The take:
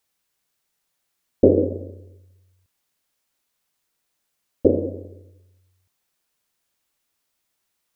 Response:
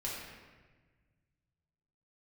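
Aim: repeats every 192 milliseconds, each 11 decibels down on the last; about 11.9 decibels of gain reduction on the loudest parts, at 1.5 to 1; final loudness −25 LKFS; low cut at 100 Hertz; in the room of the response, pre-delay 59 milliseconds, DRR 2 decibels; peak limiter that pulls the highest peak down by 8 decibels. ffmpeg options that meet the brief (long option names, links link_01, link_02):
-filter_complex "[0:a]highpass=100,acompressor=threshold=-43dB:ratio=1.5,alimiter=limit=-21dB:level=0:latency=1,aecho=1:1:192|384|576:0.282|0.0789|0.0221,asplit=2[link_01][link_02];[1:a]atrim=start_sample=2205,adelay=59[link_03];[link_02][link_03]afir=irnorm=-1:irlink=0,volume=-4.5dB[link_04];[link_01][link_04]amix=inputs=2:normalize=0,volume=10dB"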